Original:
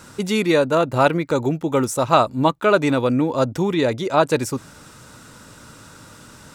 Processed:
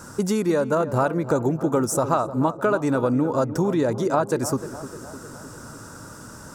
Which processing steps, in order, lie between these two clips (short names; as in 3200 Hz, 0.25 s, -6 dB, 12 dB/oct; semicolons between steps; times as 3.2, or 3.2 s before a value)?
compressor, threshold -21 dBFS, peak gain reduction 11.5 dB; band shelf 2900 Hz -11.5 dB 1.3 oct; darkening echo 0.304 s, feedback 60%, low-pass 1700 Hz, level -12.5 dB; gain +3 dB